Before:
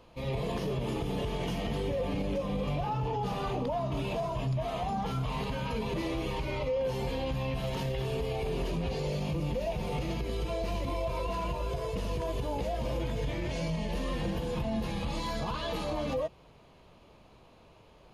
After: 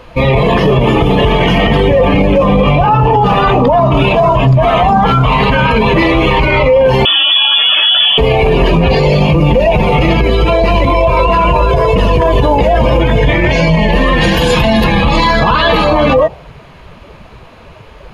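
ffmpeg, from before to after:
-filter_complex "[0:a]asettb=1/sr,asplit=3[s0][s1][s2];[s0]atrim=end=7.054[s3];[s1]atrim=start=7.05:end=8.18,asetpts=PTS-STARTPTS,afade=t=in:d=0.004:c=qsin,afade=t=out:st=1.126:d=0.004:c=qsin,lowpass=f=3000:t=q:w=0.5098,lowpass=f=3000:t=q:w=0.6013,lowpass=f=3000:t=q:w=0.9,lowpass=f=3000:t=q:w=2.563,afreqshift=-3500[s4];[s2]atrim=start=8.176[s5];[s3][s4]acrossfade=d=0.004:c1=hsin:c2=qsin[s6];[s6][s5]acrossfade=d=0.004:c1=qsin:c2=hsin,asettb=1/sr,asplit=3[s7][s8][s9];[s7]atrim=end=14.214[s10];[s8]atrim=start=14.21:end=14.84,asetpts=PTS-STARTPTS,afade=t=in:d=0.004:c=qsin,afade=t=out:st=0.626:d=0.004:c=qsin,highshelf=f=2700:g=12[s11];[s9]atrim=start=14.836[s12];[s10][s11]acrossfade=d=0.004:c1=hsin:c2=qsin[s13];[s13][s12]acrossfade=d=0.004:c1=qsin:c2=hsin,afftdn=nr=13:nf=-45,equalizer=f=1700:w=0.98:g=10,alimiter=level_in=31.6:limit=0.891:release=50:level=0:latency=1,volume=0.891"

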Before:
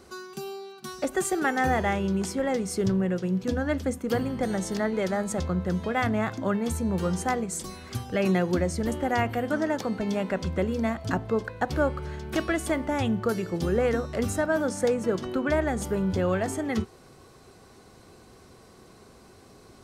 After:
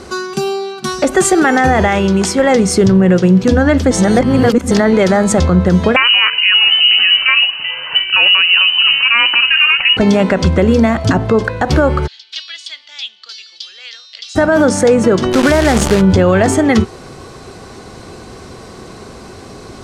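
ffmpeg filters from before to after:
-filter_complex "[0:a]asettb=1/sr,asplit=3[s0][s1][s2];[s0]atrim=end=1.884[s3];[s1]atrim=start=1.88:end=2.55,asetpts=PTS-STARTPTS,afade=t=in:d=0.004:c=qsin,afade=t=out:st=0.666:d=0.004:c=qsin,lowshelf=f=440:g=-6.5[s4];[s2]atrim=start=2.546[s5];[s3][s4]acrossfade=d=0.004:c1=hsin:c2=qsin[s6];[s6][s5]acrossfade=d=0.004:c1=qsin:c2=hsin,asettb=1/sr,asplit=3[s7][s8][s9];[s7]atrim=end=5.964[s10];[s8]atrim=start=5.96:end=9.97,asetpts=PTS-STARTPTS,afade=t=in:d=0.004:c=qsin,afade=t=out:st=4.006:d=0.004:c=qsin,lowpass=f=2600:t=q:w=0.5098,lowpass=f=2600:t=q:w=0.6013,lowpass=f=2600:t=q:w=0.9,lowpass=f=2600:t=q:w=2.563,afreqshift=-3100[s11];[s9]atrim=start=9.966[s12];[s10][s11]acrossfade=d=0.004:c1=hsin:c2=qsin[s13];[s13][s12]acrossfade=d=0.004:c1=qsin:c2=hsin,asplit=3[s14][s15][s16];[s14]afade=t=out:st=12.06:d=0.02[s17];[s15]asuperpass=centerf=4000:order=4:qfactor=2.1,afade=t=in:st=12.06:d=0.02,afade=t=out:st=14.35:d=0.02[s18];[s16]afade=t=in:st=14.35:d=0.02[s19];[s17][s18][s19]amix=inputs=3:normalize=0,asplit=3[s20][s21][s22];[s20]afade=t=out:st=15.32:d=0.02[s23];[s21]acrusher=bits=6:dc=4:mix=0:aa=0.000001,afade=t=in:st=15.32:d=0.02,afade=t=out:st=16:d=0.02[s24];[s22]afade=t=in:st=16:d=0.02[s25];[s23][s24][s25]amix=inputs=3:normalize=0,asplit=3[s26][s27][s28];[s26]atrim=end=3.912[s29];[s27]atrim=start=3.908:end=4.712,asetpts=PTS-STARTPTS,areverse[s30];[s28]atrim=start=4.708[s31];[s29][s30]acrossfade=d=0.004:c1=hsin:c2=hsin[s32];[s32][s31]acrossfade=d=0.004:c1=hsin:c2=hsin,lowpass=8400,alimiter=level_in=10:limit=0.891:release=50:level=0:latency=1,volume=0.891"

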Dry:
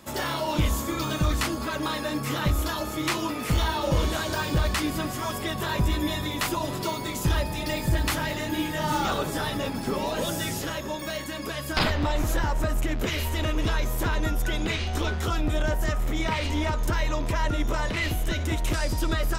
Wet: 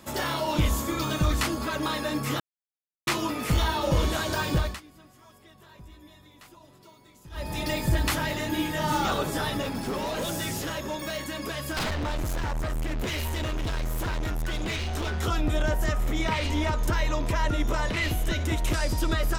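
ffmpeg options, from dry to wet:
-filter_complex "[0:a]asettb=1/sr,asplit=3[s0][s1][s2];[s0]atrim=end=9.624[s3];[s1]atrim=start=9.62:end=15.14,asetpts=PTS-STARTPTS,afade=t=in:d=0.004:c=qsin,afade=t=out:st=5.516:d=0.004:c=qsin,asoftclip=type=hard:threshold=0.0473[s4];[s2]atrim=start=15.136[s5];[s3][s4]acrossfade=d=0.004:c1=hsin:c2=qsin[s6];[s6][s5]acrossfade=d=0.004:c1=qsin:c2=hsin,asplit=5[s7][s8][s9][s10][s11];[s7]atrim=end=2.4,asetpts=PTS-STARTPTS,afade=t=out:st=2.396:d=0.004:c=hsin[s12];[s8]atrim=start=2.4:end=3.07,asetpts=PTS-STARTPTS,volume=0[s13];[s9]atrim=start=3.07:end=4.81,asetpts=PTS-STARTPTS,afade=t=in:d=0.004:c=hsin,afade=t=out:st=1.48:d=0.26:silence=0.0630957[s14];[s10]atrim=start=4.81:end=7.31,asetpts=PTS-STARTPTS,volume=0.0631[s15];[s11]atrim=start=7.31,asetpts=PTS-STARTPTS,afade=t=in:d=0.26:silence=0.0630957[s16];[s12][s13][s14][s15][s16]concat=n=5:v=0:a=1"

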